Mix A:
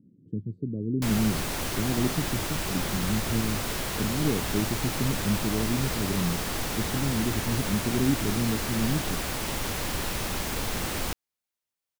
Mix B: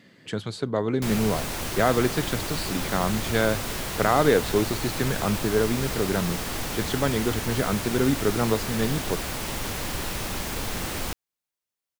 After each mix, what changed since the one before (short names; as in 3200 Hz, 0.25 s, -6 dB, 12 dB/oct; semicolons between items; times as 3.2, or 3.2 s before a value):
speech: remove inverse Chebyshev low-pass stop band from 820 Hz, stop band 50 dB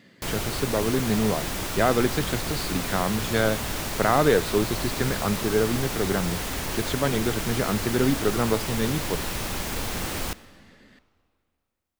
background: entry -0.80 s; reverb: on, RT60 2.4 s